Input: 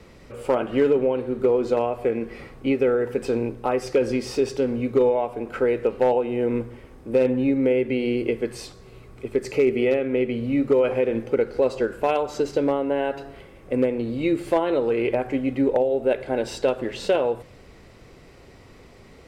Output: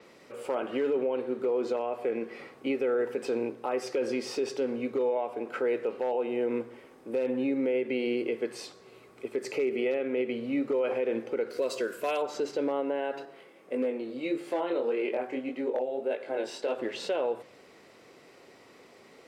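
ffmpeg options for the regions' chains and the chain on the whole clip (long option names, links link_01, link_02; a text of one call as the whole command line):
ffmpeg -i in.wav -filter_complex "[0:a]asettb=1/sr,asplit=3[link_01][link_02][link_03];[link_01]atrim=end=11.504[link_04];[link_02]atrim=start=11.5:end=12.22,asetpts=PTS-STARTPTS,afade=type=in:duration=0.004:curve=qsin,afade=type=out:start_time=0.716:duration=0.004:curve=qsin,asuperstop=centerf=820:order=12:qfactor=5.5,aemphasis=mode=production:type=75fm[link_05];[link_03]atrim=start=12.216[link_06];[link_04][link_05]acrossfade=duration=0.004:curve1=hsin:curve2=qsin[link_07];[link_07][link_06]acrossfade=duration=0.004:curve1=qsin:curve2=hsin,asettb=1/sr,asplit=3[link_08][link_09][link_10];[link_08]atrim=end=13.254[link_11];[link_09]atrim=start=13.25:end=16.75,asetpts=PTS-STARTPTS,afade=type=in:duration=0.004:curve=qsin,afade=type=out:start_time=3.496:duration=0.004:curve=qsin,highpass=frequency=140:width=0.5412,highpass=frequency=140:width=1.3066,flanger=delay=19.5:depth=4.3:speed=1.7[link_12];[link_10]atrim=start=16.746[link_13];[link_11][link_12]acrossfade=duration=0.004:curve1=hsin:curve2=qsin[link_14];[link_14][link_13]acrossfade=duration=0.004:curve1=qsin:curve2=hsin,highpass=290,alimiter=limit=-18dB:level=0:latency=1:release=41,adynamicequalizer=threshold=0.00158:dfrequency=7400:dqfactor=0.7:tfrequency=7400:tqfactor=0.7:attack=5:release=100:ratio=0.375:range=2.5:mode=cutabove:tftype=highshelf,volume=-3dB" out.wav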